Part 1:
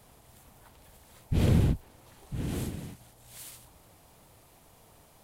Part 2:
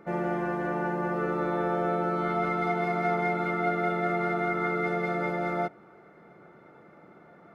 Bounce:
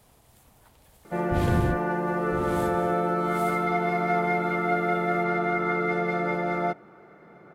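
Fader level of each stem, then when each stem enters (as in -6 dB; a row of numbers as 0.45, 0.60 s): -1.5, +2.5 dB; 0.00, 1.05 s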